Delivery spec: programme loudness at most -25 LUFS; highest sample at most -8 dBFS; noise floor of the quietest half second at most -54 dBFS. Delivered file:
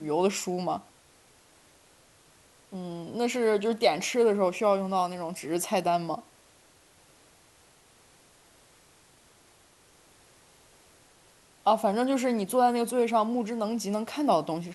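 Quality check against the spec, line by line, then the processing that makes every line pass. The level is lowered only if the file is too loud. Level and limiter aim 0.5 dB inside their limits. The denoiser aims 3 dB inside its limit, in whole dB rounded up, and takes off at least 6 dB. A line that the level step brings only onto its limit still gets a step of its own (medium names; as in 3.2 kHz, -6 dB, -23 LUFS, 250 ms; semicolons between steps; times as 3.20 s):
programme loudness -27.5 LUFS: pass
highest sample -10.0 dBFS: pass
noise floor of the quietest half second -60 dBFS: pass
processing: none needed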